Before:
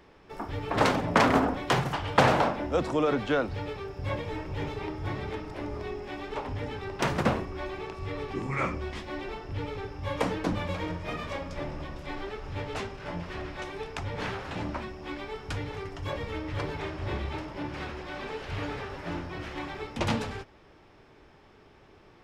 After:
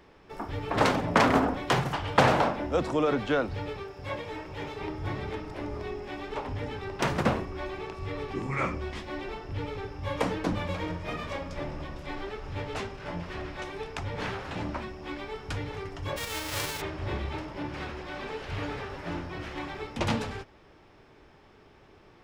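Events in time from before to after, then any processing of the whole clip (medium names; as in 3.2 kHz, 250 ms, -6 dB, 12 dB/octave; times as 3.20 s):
3.83–4.79 s: bass shelf 240 Hz -9.5 dB
16.16–16.80 s: formants flattened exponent 0.3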